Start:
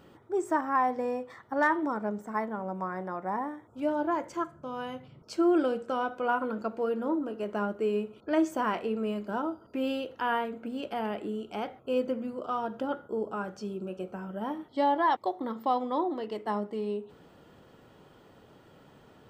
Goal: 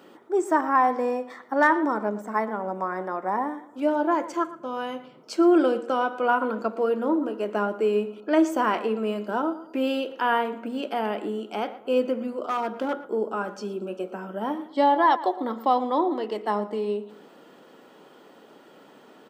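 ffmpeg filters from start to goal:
-filter_complex "[0:a]asplit=3[a][b][c];[a]afade=t=out:st=12.47:d=0.02[d];[b]volume=27dB,asoftclip=hard,volume=-27dB,afade=t=in:st=12.47:d=0.02,afade=t=out:st=12.92:d=0.02[e];[c]afade=t=in:st=12.92:d=0.02[f];[d][e][f]amix=inputs=3:normalize=0,highpass=f=220:w=0.5412,highpass=f=220:w=1.3066,asplit=2[g][h];[h]adelay=115,lowpass=f=3.2k:p=1,volume=-15.5dB,asplit=2[i][j];[j]adelay=115,lowpass=f=3.2k:p=1,volume=0.35,asplit=2[k][l];[l]adelay=115,lowpass=f=3.2k:p=1,volume=0.35[m];[i][k][m]amix=inputs=3:normalize=0[n];[g][n]amix=inputs=2:normalize=0,volume=6dB"

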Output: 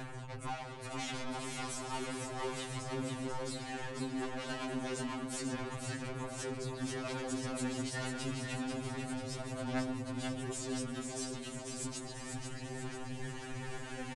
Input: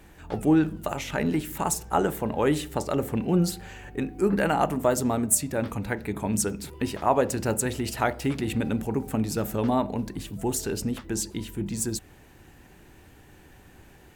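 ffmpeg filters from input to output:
-filter_complex "[0:a]asettb=1/sr,asplit=3[a][b][c];[a]atrim=end=1.084[d];[b]atrim=start=1.08:end=1.67,asetpts=PTS-STARTPTS,afade=t=in:d=0.004:c=qsin,afade=t=out:st=0.586:d=0.004:c=qsin,acontrast=46[e];[c]atrim=start=1.666[f];[d][e]acrossfade=d=0.004:c1=hsin:c2=qsin[g];[g][f]acrossfade=d=0.004:c1=qsin:c2=hsin,aeval=exprs='0.422*sin(PI/2*5.01*val(0)/0.422)':c=same,asplit=2[h][i];[i]adelay=140,highpass=300,lowpass=3.4k,asoftclip=type=hard:threshold=-16dB,volume=-7dB[j];[h][j]amix=inputs=2:normalize=0,aphaser=in_gain=1:out_gain=1:delay=5:decay=0.55:speed=0.31:type=sinusoidal,acompressor=threshold=-40dB:ratio=3,aeval=exprs='(tanh(89.1*val(0)+0.05)-tanh(0.05))/89.1':c=same,aresample=22050,aresample=44100,asplit=2[k][l];[l]aecho=0:1:491|982|1473|1964|2455|2946|3437:0.562|0.309|0.17|0.0936|0.0515|0.0283|0.0156[m];[k][m]amix=inputs=2:normalize=0,afftfilt=real='re*2.45*eq(mod(b,6),0)':imag='im*2.45*eq(mod(b,6),0)':win_size=2048:overlap=0.75,volume=3dB"

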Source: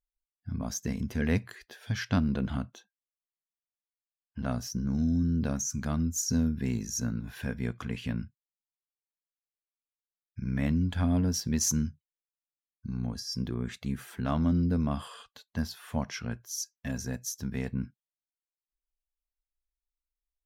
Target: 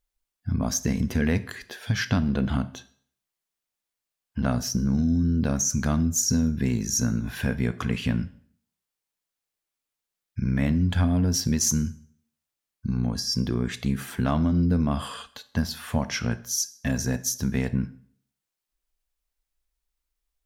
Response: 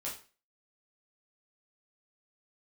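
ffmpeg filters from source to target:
-filter_complex "[0:a]acompressor=threshold=-29dB:ratio=6,asplit=2[a][b];[1:a]atrim=start_sample=2205,asetrate=27783,aresample=44100[c];[b][c]afir=irnorm=-1:irlink=0,volume=-16.5dB[d];[a][d]amix=inputs=2:normalize=0,volume=8.5dB"

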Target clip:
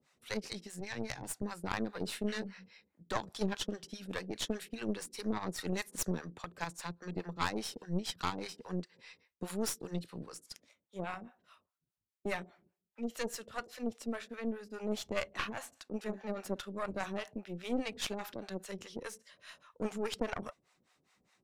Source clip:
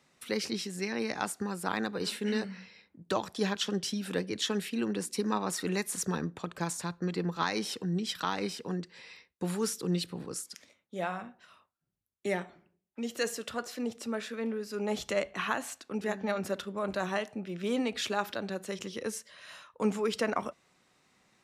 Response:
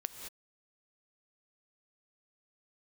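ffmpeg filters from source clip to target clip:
-filter_complex "[0:a]acrossover=split=550[a][b];[a]aeval=exprs='val(0)*(1-1/2+1/2*cos(2*PI*4.9*n/s))':c=same[c];[b]aeval=exprs='val(0)*(1-1/2-1/2*cos(2*PI*4.9*n/s))':c=same[d];[c][d]amix=inputs=2:normalize=0,asplit=2[e][f];[f]asoftclip=type=tanh:threshold=-28.5dB,volume=-9dB[g];[e][g]amix=inputs=2:normalize=0,aeval=exprs='0.15*(cos(1*acos(clip(val(0)/0.15,-1,1)))-cos(1*PI/2))+0.0422*(cos(4*acos(clip(val(0)/0.15,-1,1)))-cos(4*PI/2))':c=same,asettb=1/sr,asplit=3[h][i][j];[h]atrim=end=0.804[k];[i]atrim=start=0.8:end=1.43,asetpts=PTS-STARTPTS,afade=t=in:d=0.004:c=qsin,afade=t=out:st=0.626:d=0.004:c=qsin,equalizer=f=125:t=o:w=0.33:g=10,equalizer=f=200:t=o:w=0.33:g=-9,equalizer=f=400:t=o:w=0.33:g=-7,equalizer=f=630:t=o:w=0.33:g=-4,equalizer=f=1.25k:t=o:w=0.33:g=-7[l];[j]atrim=start=1.426[m];[k][l]acrossfade=d=0.004:c1=hsin:c2=qsin[n];[n][m]acrossfade=d=0.004:c1=qsin:c2=hsin,volume=-4dB"

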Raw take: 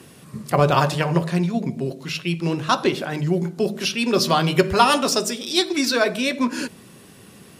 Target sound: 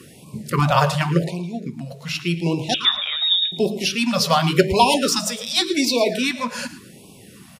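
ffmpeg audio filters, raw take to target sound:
-filter_complex "[0:a]asplit=3[a][b][c];[a]afade=t=out:st=1.3:d=0.02[d];[b]acompressor=threshold=-26dB:ratio=6,afade=t=in:st=1.3:d=0.02,afade=t=out:st=1.9:d=0.02[e];[c]afade=t=in:st=1.9:d=0.02[f];[d][e][f]amix=inputs=3:normalize=0,asettb=1/sr,asplit=3[g][h][i];[g]atrim=end=2.744[j];[h]atrim=start=2.74:end=3.52,asetpts=PTS-STARTPTS,afade=t=in:d=0.004:c=qsin,afade=t=out:st=0.776:d=0.004:c=qsin,lowpass=f=3.3k:t=q:w=0.5098,lowpass=f=3.3k:t=q:w=0.6013,lowpass=f=3.3k:t=q:w=0.9,lowpass=f=3.3k:t=q:w=2.563,afreqshift=-3900[k];[i]atrim=start=3.516[l];[j][k]acrossfade=d=0.004:c1=hsin:c2=qsin[m];[m][l]acrossfade=d=0.004:c1=qsin:c2=hsin,bandreject=f=1.6k:w=29,asplit=2[n][o];[o]aecho=0:1:112|224|336:0.188|0.0471|0.0118[p];[n][p]amix=inputs=2:normalize=0,afftfilt=real='re*(1-between(b*sr/1024,300*pow(1600/300,0.5+0.5*sin(2*PI*0.88*pts/sr))/1.41,300*pow(1600/300,0.5+0.5*sin(2*PI*0.88*pts/sr))*1.41))':imag='im*(1-between(b*sr/1024,300*pow(1600/300,0.5+0.5*sin(2*PI*0.88*pts/sr))/1.41,300*pow(1600/300,0.5+0.5*sin(2*PI*0.88*pts/sr))*1.41))':win_size=1024:overlap=0.75,volume=1.5dB"

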